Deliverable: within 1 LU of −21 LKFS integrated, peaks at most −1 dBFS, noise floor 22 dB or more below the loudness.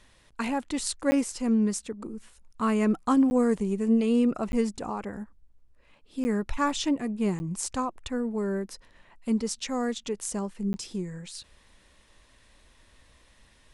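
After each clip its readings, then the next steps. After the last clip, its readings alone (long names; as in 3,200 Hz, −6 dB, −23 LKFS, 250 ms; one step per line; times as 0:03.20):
number of dropouts 6; longest dropout 10 ms; integrated loudness −28.0 LKFS; sample peak −12.0 dBFS; target loudness −21.0 LKFS
→ repair the gap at 0:01.11/0:03.30/0:04.52/0:06.24/0:07.39/0:10.73, 10 ms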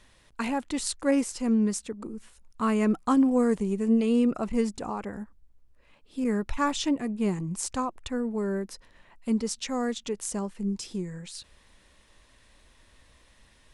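number of dropouts 0; integrated loudness −28.0 LKFS; sample peak −12.0 dBFS; target loudness −21.0 LKFS
→ level +7 dB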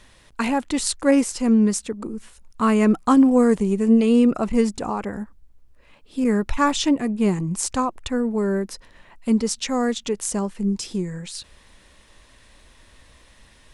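integrated loudness −21.0 LKFS; sample peak −5.0 dBFS; background noise floor −53 dBFS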